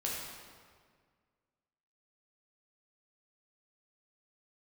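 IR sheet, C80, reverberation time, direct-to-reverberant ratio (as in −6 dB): 1.5 dB, 1.8 s, −4.5 dB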